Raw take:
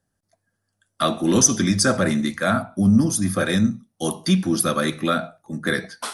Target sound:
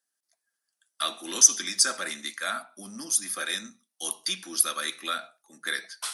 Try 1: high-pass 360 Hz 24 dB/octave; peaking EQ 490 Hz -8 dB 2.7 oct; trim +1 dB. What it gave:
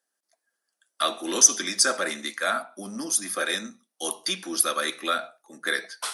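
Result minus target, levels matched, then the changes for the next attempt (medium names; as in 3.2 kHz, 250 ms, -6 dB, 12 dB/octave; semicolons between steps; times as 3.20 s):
500 Hz band +9.0 dB
change: peaking EQ 490 Hz -19 dB 2.7 oct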